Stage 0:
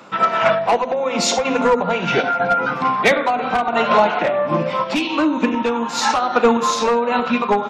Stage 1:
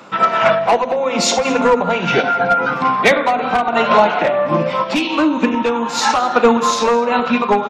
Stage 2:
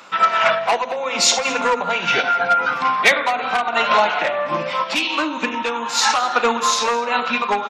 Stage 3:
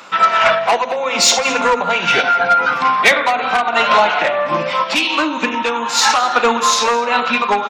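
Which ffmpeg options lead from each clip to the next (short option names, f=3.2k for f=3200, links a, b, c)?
-af "aecho=1:1:214:0.126,volume=2.5dB"
-af "tiltshelf=f=690:g=-8,volume=-5.5dB"
-af "acontrast=42,volume=-1dB"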